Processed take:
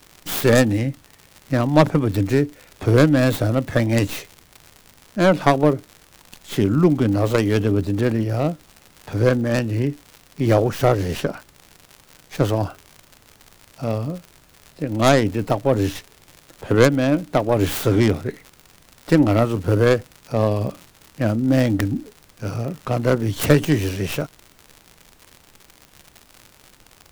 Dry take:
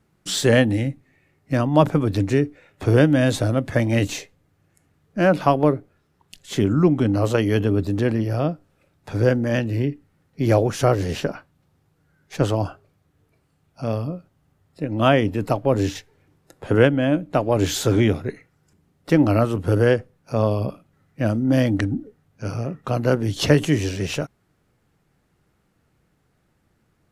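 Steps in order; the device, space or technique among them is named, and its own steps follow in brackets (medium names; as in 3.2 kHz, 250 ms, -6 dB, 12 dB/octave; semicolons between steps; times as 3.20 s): record under a worn stylus (tracing distortion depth 0.36 ms; crackle 110 per s -30 dBFS; pink noise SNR 34 dB); trim +1 dB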